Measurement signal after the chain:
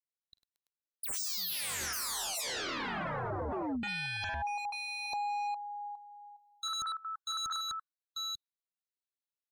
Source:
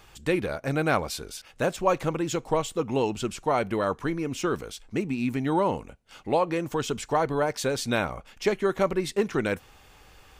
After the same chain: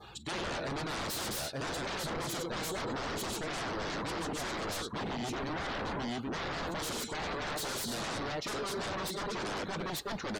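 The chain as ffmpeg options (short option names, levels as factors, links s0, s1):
-af "equalizer=f=4000:w=7.2:g=10,aecho=1:1:40|50|100|228|336|892:0.266|0.224|0.422|0.15|0.133|0.562,areverse,acompressor=threshold=0.0282:ratio=16,areverse,highpass=f=120:p=1,aeval=exprs='0.0119*(abs(mod(val(0)/0.0119+3,4)-2)-1)':c=same,acontrast=31,adynamicequalizer=threshold=0.002:dfrequency=2500:dqfactor=2:tfrequency=2500:tqfactor=2:attack=5:release=100:ratio=0.375:range=2:mode=cutabove:tftype=bell,afftdn=nr=20:nf=-52,volume=1.33"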